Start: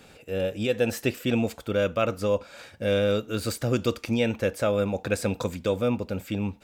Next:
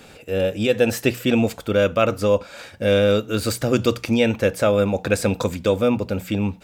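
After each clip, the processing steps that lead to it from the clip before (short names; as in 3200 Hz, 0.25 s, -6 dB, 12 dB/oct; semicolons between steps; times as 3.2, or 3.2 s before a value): notches 60/120/180 Hz; gain +6.5 dB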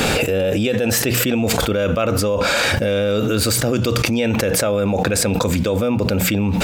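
fast leveller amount 100%; gain -5 dB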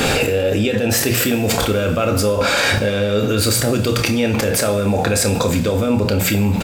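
doubler 29 ms -11 dB; two-slope reverb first 0.51 s, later 4 s, from -18 dB, DRR 6 dB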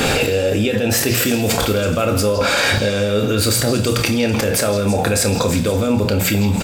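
delay with a stepping band-pass 0.164 s, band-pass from 4200 Hz, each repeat 0.7 oct, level -8 dB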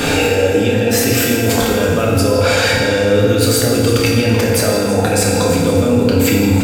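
FDN reverb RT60 2.6 s, high-frequency decay 0.5×, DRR -2 dB; gain -1.5 dB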